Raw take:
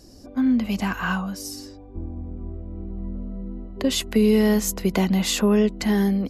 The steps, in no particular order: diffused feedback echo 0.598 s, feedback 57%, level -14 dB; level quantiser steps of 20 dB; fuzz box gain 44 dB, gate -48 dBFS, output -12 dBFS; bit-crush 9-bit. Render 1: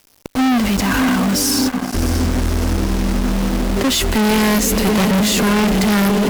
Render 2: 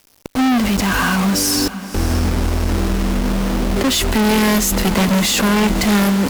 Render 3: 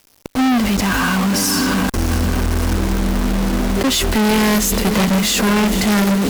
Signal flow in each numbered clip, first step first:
level quantiser > bit-crush > diffused feedback echo > fuzz box; level quantiser > bit-crush > fuzz box > diffused feedback echo; diffused feedback echo > level quantiser > bit-crush > fuzz box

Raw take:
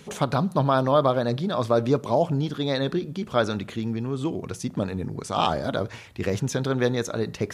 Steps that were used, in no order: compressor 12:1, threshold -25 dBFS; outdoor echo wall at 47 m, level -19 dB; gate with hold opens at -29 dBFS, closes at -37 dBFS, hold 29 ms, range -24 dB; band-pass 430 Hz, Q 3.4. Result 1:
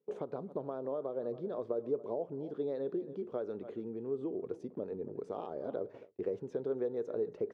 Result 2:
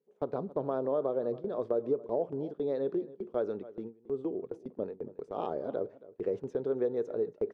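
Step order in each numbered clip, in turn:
outdoor echo > compressor > gate with hold > band-pass; band-pass > gate with hold > outdoor echo > compressor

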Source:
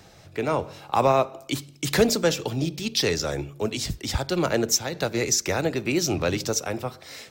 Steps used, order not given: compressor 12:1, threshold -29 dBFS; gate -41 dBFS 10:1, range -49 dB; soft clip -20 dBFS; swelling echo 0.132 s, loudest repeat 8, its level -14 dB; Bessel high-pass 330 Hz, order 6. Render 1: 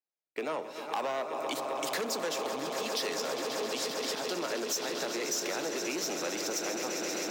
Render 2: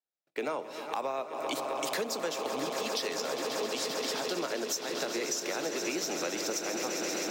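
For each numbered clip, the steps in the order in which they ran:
swelling echo > soft clip > compressor > Bessel high-pass > gate; swelling echo > gate > Bessel high-pass > compressor > soft clip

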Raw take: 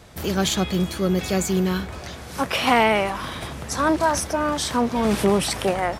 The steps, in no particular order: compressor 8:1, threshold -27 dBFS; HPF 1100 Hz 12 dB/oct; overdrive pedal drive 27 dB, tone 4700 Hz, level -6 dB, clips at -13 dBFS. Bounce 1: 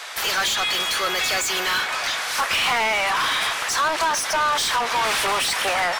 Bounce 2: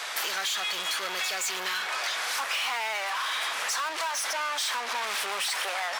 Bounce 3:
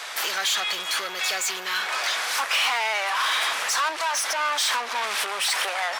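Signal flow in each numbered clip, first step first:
HPF > compressor > overdrive pedal; overdrive pedal > HPF > compressor; compressor > overdrive pedal > HPF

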